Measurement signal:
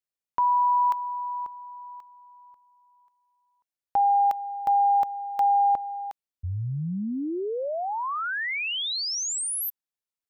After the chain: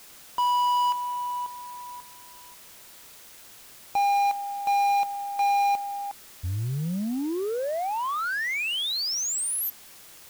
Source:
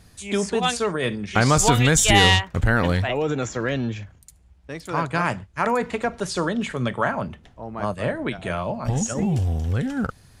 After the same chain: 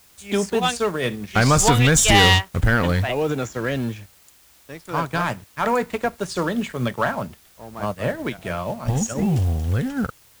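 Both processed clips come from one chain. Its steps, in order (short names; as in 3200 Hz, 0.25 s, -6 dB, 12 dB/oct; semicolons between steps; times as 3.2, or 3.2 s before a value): sample leveller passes 2; added noise white -42 dBFS; upward expander 1.5:1, over -26 dBFS; gain -3 dB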